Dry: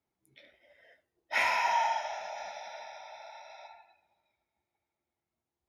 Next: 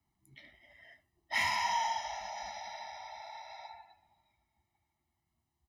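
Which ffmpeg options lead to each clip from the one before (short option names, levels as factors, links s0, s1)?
-filter_complex "[0:a]lowshelf=f=150:g=9,aecho=1:1:1:0.95,acrossover=split=240|3000[s0][s1][s2];[s1]acompressor=threshold=0.00398:ratio=1.5[s3];[s0][s3][s2]amix=inputs=3:normalize=0"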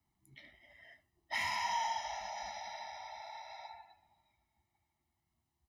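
-af "alimiter=level_in=1.06:limit=0.0631:level=0:latency=1:release=286,volume=0.944,volume=0.891"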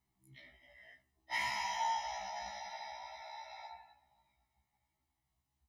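-af "afftfilt=real='re*1.73*eq(mod(b,3),0)':imag='im*1.73*eq(mod(b,3),0)':win_size=2048:overlap=0.75,volume=1.19"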